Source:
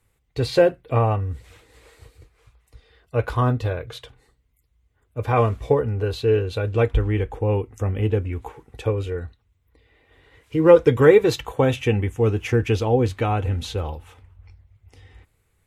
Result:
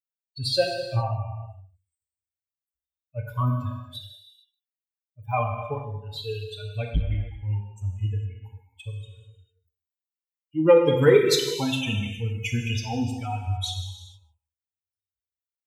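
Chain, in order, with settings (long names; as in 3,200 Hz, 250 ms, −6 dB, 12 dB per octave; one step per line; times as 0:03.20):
spectral dynamics exaggerated over time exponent 3
high shelf with overshoot 2,400 Hz +8 dB, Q 1.5
on a send: single-tap delay 149 ms −23 dB
on the sum: reverb whose tail is shaped and stops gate 480 ms falling, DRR 2 dB
saturating transformer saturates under 230 Hz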